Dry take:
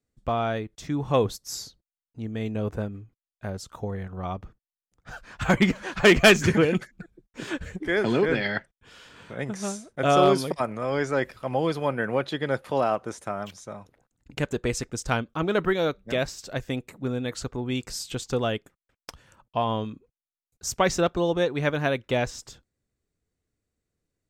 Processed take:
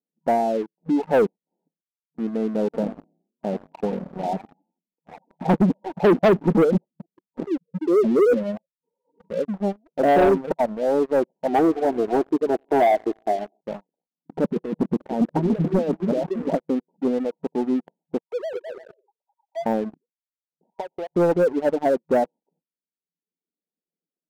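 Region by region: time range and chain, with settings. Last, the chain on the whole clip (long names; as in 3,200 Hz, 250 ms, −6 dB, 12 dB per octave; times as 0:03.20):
0:02.65–0:05.26: mains-hum notches 60/120/180 Hz + echo with shifted repeats 84 ms, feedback 44%, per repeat +33 Hz, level −7 dB
0:07.47–0:09.54: expanding power law on the bin magnitudes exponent 2.7 + comb filter 2 ms, depth 37%
0:11.48–0:13.61: comb filter 2.8 ms, depth 85% + bucket-brigade delay 91 ms, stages 4,096, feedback 72%, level −18 dB
0:14.44–0:16.58: low-shelf EQ 370 Hz +8.5 dB + compressor whose output falls as the input rises −25 dBFS, ratio −0.5 + echo through a band-pass that steps 282 ms, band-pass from 210 Hz, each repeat 0.7 octaves, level −4 dB
0:18.19–0:19.66: three sine waves on the formant tracks + downward compressor 1.5 to 1, threshold −55 dBFS + bouncing-ball delay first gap 210 ms, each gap 0.65×, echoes 5
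0:20.70–0:21.16: high-pass filter 680 Hz + high-shelf EQ 6,100 Hz −10 dB + downward compressor 16 to 1, threshold −32 dBFS
whole clip: brick-wall band-pass 160–960 Hz; reverb reduction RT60 1 s; leveller curve on the samples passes 3; level −2 dB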